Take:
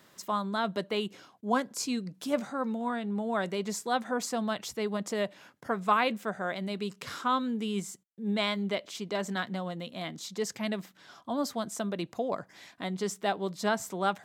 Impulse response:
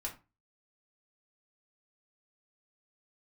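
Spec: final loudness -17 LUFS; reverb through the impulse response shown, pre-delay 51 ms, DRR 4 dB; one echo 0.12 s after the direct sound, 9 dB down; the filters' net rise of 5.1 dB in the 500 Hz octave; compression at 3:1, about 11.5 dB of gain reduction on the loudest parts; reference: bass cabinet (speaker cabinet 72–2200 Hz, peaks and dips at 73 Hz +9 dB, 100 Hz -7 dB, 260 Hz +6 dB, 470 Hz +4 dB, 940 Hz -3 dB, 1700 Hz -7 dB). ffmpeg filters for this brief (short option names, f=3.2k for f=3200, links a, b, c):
-filter_complex "[0:a]equalizer=f=500:t=o:g=4,acompressor=threshold=-36dB:ratio=3,aecho=1:1:120:0.355,asplit=2[a][b];[1:a]atrim=start_sample=2205,adelay=51[c];[b][c]afir=irnorm=-1:irlink=0,volume=-4dB[d];[a][d]amix=inputs=2:normalize=0,highpass=f=72:w=0.5412,highpass=f=72:w=1.3066,equalizer=f=73:t=q:w=4:g=9,equalizer=f=100:t=q:w=4:g=-7,equalizer=f=260:t=q:w=4:g=6,equalizer=f=470:t=q:w=4:g=4,equalizer=f=940:t=q:w=4:g=-3,equalizer=f=1.7k:t=q:w=4:g=-7,lowpass=f=2.2k:w=0.5412,lowpass=f=2.2k:w=1.3066,volume=19dB"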